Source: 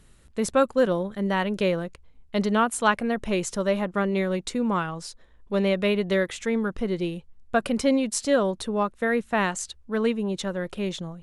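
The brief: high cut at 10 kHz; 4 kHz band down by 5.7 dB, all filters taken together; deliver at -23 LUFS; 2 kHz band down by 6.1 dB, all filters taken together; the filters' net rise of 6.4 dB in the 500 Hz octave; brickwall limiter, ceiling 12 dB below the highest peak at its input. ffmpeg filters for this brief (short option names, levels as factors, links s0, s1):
-af "lowpass=10000,equalizer=f=500:t=o:g=8,equalizer=f=2000:t=o:g=-8,equalizer=f=4000:t=o:g=-4.5,volume=1.5,alimiter=limit=0.211:level=0:latency=1"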